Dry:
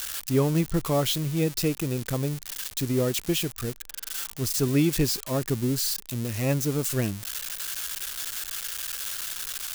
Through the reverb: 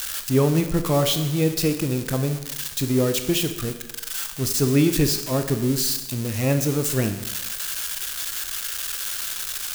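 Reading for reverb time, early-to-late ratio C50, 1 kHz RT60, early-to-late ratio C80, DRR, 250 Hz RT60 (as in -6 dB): 1.1 s, 9.5 dB, 1.1 s, 11.0 dB, 7.5 dB, 0.95 s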